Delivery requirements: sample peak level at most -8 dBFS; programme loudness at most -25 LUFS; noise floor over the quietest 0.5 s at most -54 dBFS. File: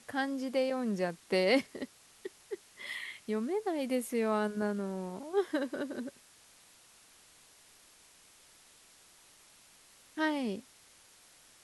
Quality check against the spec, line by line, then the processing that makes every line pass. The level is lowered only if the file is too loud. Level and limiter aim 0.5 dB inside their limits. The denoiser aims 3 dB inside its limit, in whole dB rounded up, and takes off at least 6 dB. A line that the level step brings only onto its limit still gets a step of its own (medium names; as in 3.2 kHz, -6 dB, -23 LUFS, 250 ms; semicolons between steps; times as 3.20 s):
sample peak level -15.0 dBFS: pass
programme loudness -34.0 LUFS: pass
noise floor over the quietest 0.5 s -61 dBFS: pass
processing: none needed